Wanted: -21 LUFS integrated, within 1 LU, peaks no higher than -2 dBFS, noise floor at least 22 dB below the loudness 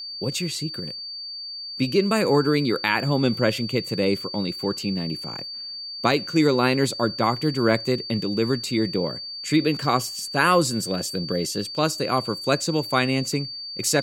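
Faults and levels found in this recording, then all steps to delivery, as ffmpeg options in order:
steady tone 4600 Hz; tone level -32 dBFS; loudness -23.5 LUFS; peak -5.0 dBFS; loudness target -21.0 LUFS
-> -af "bandreject=f=4.6k:w=30"
-af "volume=2.5dB"

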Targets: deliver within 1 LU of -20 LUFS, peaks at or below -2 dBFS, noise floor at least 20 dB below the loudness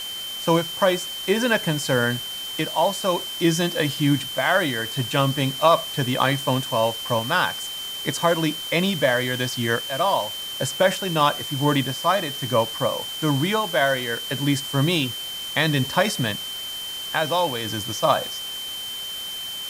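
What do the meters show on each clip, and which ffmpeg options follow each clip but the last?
steady tone 3100 Hz; tone level -30 dBFS; noise floor -32 dBFS; noise floor target -43 dBFS; loudness -22.5 LUFS; peak -4.0 dBFS; loudness target -20.0 LUFS
-> -af "bandreject=f=3.1k:w=30"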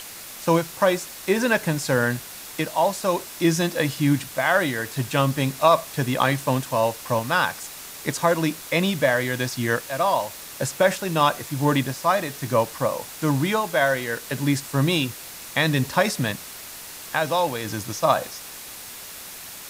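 steady tone none; noise floor -39 dBFS; noise floor target -43 dBFS
-> -af "afftdn=nr=6:nf=-39"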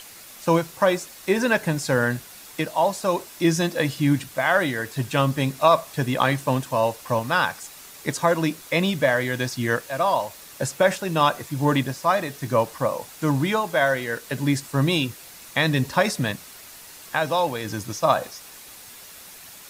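noise floor -44 dBFS; loudness -23.0 LUFS; peak -4.0 dBFS; loudness target -20.0 LUFS
-> -af "volume=3dB,alimiter=limit=-2dB:level=0:latency=1"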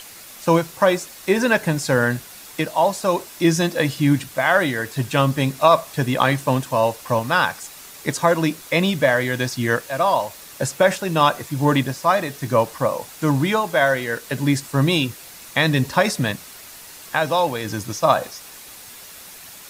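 loudness -20.0 LUFS; peak -2.0 dBFS; noise floor -41 dBFS

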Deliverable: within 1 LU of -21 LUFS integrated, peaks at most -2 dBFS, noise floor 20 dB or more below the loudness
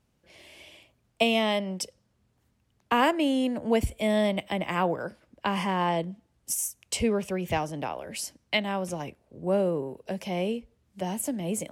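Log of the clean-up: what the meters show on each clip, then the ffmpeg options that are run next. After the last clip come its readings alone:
loudness -28.5 LUFS; peak -11.0 dBFS; loudness target -21.0 LUFS
-> -af "volume=7.5dB"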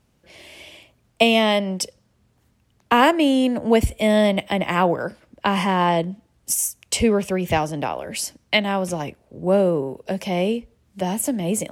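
loudness -21.0 LUFS; peak -3.5 dBFS; noise floor -64 dBFS

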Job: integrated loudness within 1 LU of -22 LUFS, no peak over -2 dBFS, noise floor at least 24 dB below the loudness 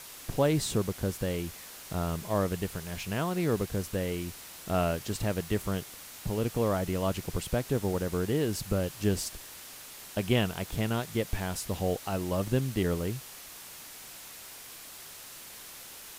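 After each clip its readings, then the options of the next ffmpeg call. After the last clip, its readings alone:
noise floor -47 dBFS; noise floor target -56 dBFS; loudness -31.5 LUFS; peak -12.5 dBFS; loudness target -22.0 LUFS
-> -af "afftdn=nr=9:nf=-47"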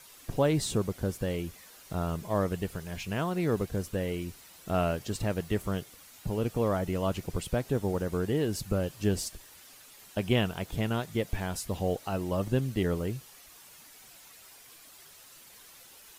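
noise floor -53 dBFS; noise floor target -56 dBFS
-> -af "afftdn=nr=6:nf=-53"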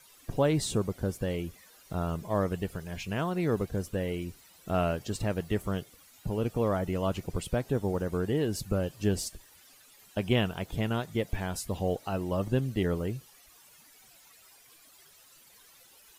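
noise floor -58 dBFS; loudness -31.5 LUFS; peak -12.5 dBFS; loudness target -22.0 LUFS
-> -af "volume=9.5dB"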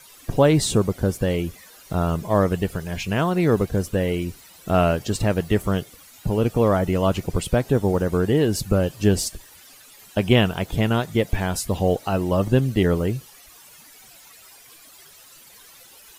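loudness -22.0 LUFS; peak -3.0 dBFS; noise floor -48 dBFS

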